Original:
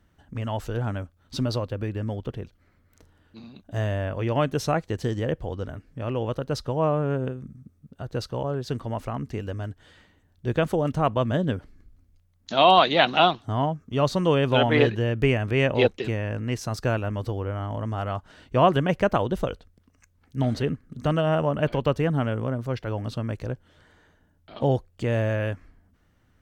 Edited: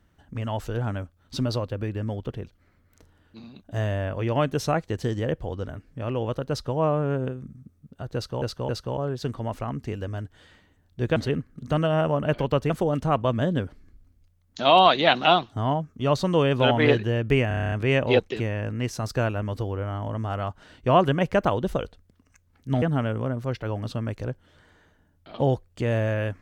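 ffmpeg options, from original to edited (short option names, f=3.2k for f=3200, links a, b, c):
-filter_complex "[0:a]asplit=14[a][b][c][d][e][f][g][h][i][j][k][l][m][n];[a]atrim=end=8.422[o];[b]atrim=start=8.148:end=8.422[p];[c]atrim=start=8.148:end=10.622[q];[d]atrim=start=20.498:end=22.042[r];[e]atrim=start=10.618:end=15.432[s];[f]atrim=start=15.398:end=15.432[t];[g]atrim=start=15.398:end=15.432[u];[h]atrim=start=15.398:end=15.432[v];[i]atrim=start=15.398:end=15.432[w];[j]atrim=start=15.398:end=15.432[x];[k]atrim=start=15.398:end=15.432[y];[l]atrim=start=15.398:end=15.432[z];[m]atrim=start=15.398:end=20.502[aa];[n]atrim=start=22.038[ab];[o][p]acrossfade=d=0.004:c1=hsin:c2=hsin[ac];[ac][q]acrossfade=d=0.004:c1=hsin:c2=hsin[ad];[ad][r]acrossfade=d=0.004:c1=hsin:c2=hsin[ae];[ae][s]acrossfade=d=0.004:c1=hsin:c2=hsin[af];[af][t]acrossfade=d=0.004:c1=hsin:c2=hsin[ag];[ag][u]acrossfade=d=0.004:c1=hsin:c2=hsin[ah];[ah][v]acrossfade=d=0.004:c1=hsin:c2=hsin[ai];[ai][w]acrossfade=d=0.004:c1=hsin:c2=hsin[aj];[aj][x]acrossfade=d=0.004:c1=hsin:c2=hsin[ak];[ak][y]acrossfade=d=0.004:c1=hsin:c2=hsin[al];[al][z]acrossfade=d=0.004:c1=hsin:c2=hsin[am];[am][aa]acrossfade=d=0.004:c1=hsin:c2=hsin[an];[an][ab]acrossfade=d=0.004:c1=hsin:c2=hsin"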